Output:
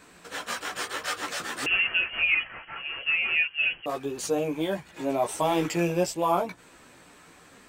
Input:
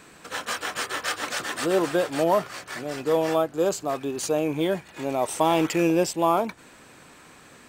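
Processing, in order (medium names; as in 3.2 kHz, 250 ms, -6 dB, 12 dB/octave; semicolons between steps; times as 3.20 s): chorus voices 4, 0.71 Hz, delay 14 ms, depth 3.6 ms; 1.66–3.86 s: frequency inversion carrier 3.1 kHz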